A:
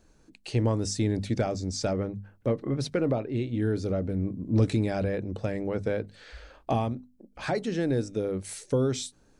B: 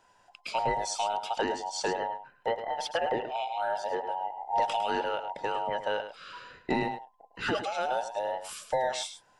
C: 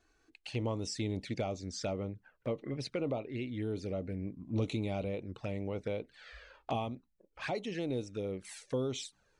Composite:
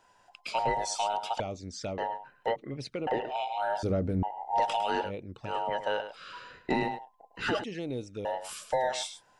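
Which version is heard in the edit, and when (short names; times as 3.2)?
B
1.4–1.98 from C
2.56–3.07 from C
3.83–4.23 from A
5.07–5.49 from C, crossfade 0.10 s
7.64–8.25 from C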